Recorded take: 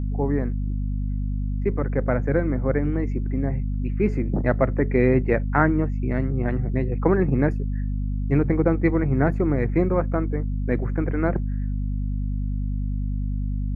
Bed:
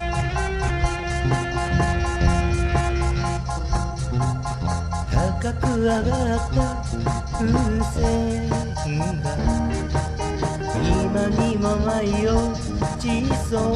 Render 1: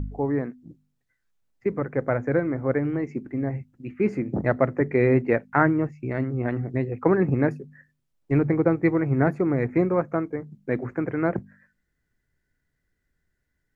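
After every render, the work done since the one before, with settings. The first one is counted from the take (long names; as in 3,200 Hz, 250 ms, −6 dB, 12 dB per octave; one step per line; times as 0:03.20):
hum removal 50 Hz, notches 5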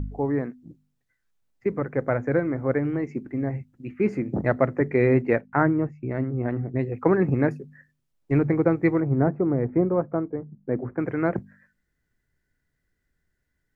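0:05.41–0:06.79: high-shelf EQ 2,200 Hz −11 dB
0:09.00–0:10.98: low-pass filter 1,000 Hz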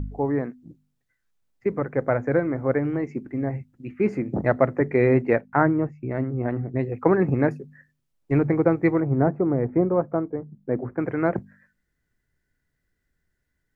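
dynamic equaliser 760 Hz, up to +3 dB, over −34 dBFS, Q 1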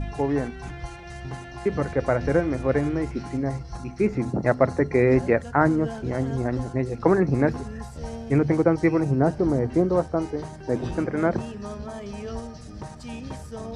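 mix in bed −14 dB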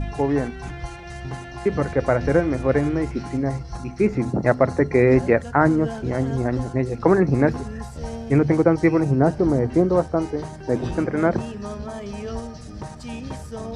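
level +3 dB
brickwall limiter −3 dBFS, peak gain reduction 2 dB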